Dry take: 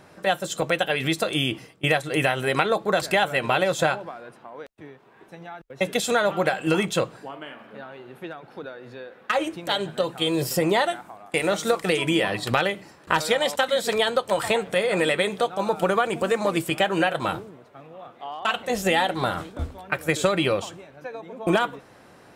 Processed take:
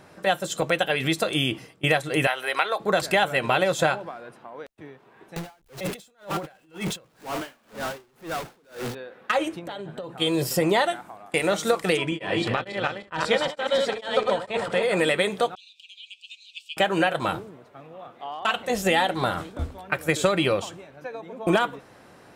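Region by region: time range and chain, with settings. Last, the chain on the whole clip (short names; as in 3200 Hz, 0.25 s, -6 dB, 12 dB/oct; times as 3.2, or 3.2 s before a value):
2.27–2.8 HPF 690 Hz + bell 7300 Hz -10 dB 0.39 oct
5.36–8.95 zero-crossing step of -28 dBFS + negative-ratio compressor -26 dBFS + dB-linear tremolo 2 Hz, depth 35 dB
9.59–10.2 high shelf 2400 Hz -11.5 dB + compressor 12:1, threshold -30 dBFS
11.97–14.83 regenerating reverse delay 0.151 s, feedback 40%, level -3 dB + air absorption 78 m + beating tremolo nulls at 2.2 Hz
15.55–16.77 steep high-pass 2600 Hz 96 dB/oct + air absorption 190 m
whole clip: dry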